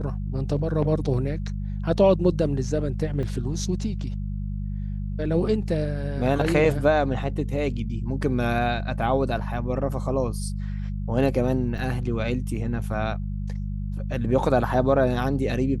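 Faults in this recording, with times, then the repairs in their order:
mains hum 50 Hz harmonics 4 −29 dBFS
0:03.23: drop-out 2.3 ms
0:11.78: drop-out 4.2 ms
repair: hum removal 50 Hz, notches 4
repair the gap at 0:03.23, 2.3 ms
repair the gap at 0:11.78, 4.2 ms

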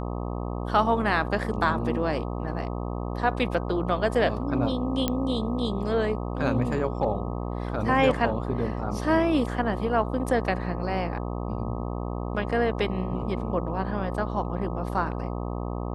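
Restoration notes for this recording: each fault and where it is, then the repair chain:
mains buzz 60 Hz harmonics 21 −31 dBFS
0:05.08: click −10 dBFS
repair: click removal
hum removal 60 Hz, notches 21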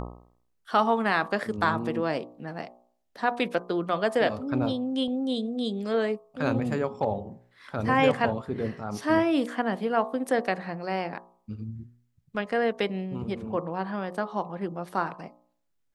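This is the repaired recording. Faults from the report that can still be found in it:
none of them is left

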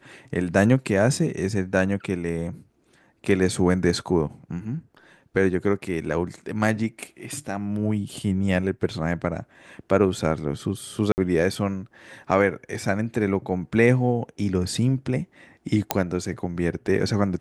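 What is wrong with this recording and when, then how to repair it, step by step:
0:11.12–0:11.18: drop-out 59 ms
0:15.91: click −2 dBFS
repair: click removal
repair the gap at 0:11.12, 59 ms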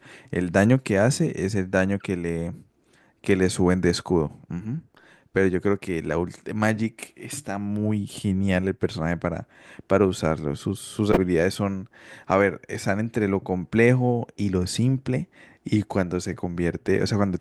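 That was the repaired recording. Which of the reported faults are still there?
none of them is left

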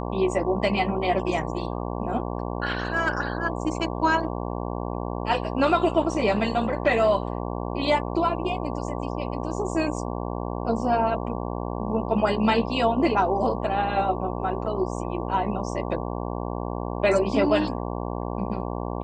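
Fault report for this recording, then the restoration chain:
mains buzz 60 Hz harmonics 19 −30 dBFS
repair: hum removal 60 Hz, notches 19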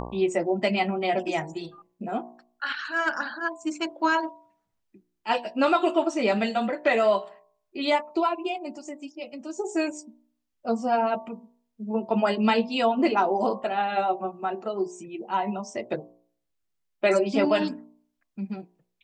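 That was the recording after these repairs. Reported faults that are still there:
none of them is left

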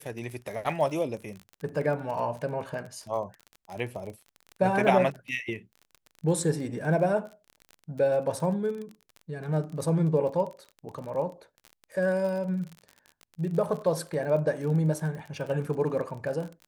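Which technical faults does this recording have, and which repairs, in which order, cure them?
surface crackle 33 per second −35 dBFS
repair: click removal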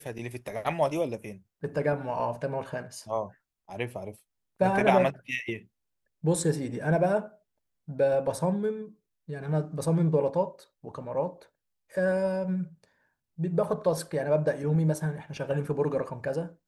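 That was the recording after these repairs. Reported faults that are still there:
none of them is left

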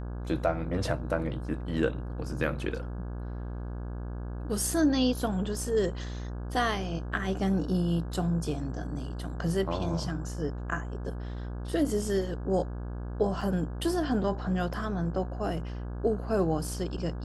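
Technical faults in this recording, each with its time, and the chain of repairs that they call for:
mains buzz 60 Hz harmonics 28 −36 dBFS
0:13.41: drop-out 4.3 ms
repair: hum removal 60 Hz, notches 28
repair the gap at 0:13.41, 4.3 ms

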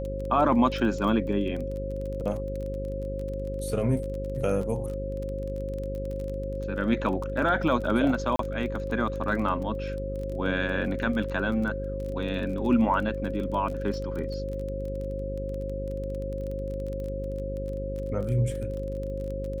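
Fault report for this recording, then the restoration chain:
mains buzz 50 Hz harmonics 10 −34 dBFS
surface crackle 22 per second −33 dBFS
whistle 540 Hz −33 dBFS
0:08.36–0:08.39: drop-out 33 ms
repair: click removal
hum removal 50 Hz, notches 10
notch filter 540 Hz, Q 30
repair the gap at 0:08.36, 33 ms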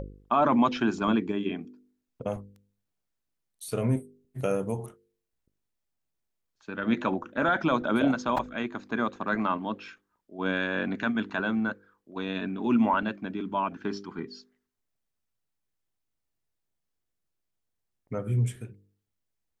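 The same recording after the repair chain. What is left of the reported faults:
none of them is left

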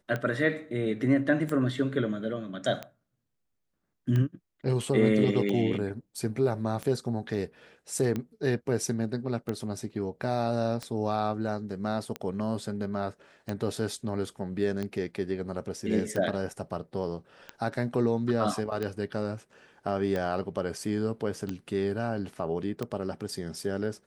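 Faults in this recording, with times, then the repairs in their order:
scratch tick 45 rpm −19 dBFS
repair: click removal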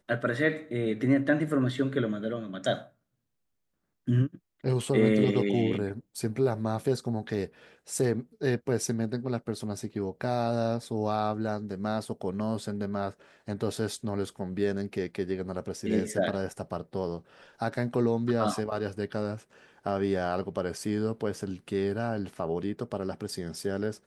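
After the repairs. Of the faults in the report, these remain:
none of them is left

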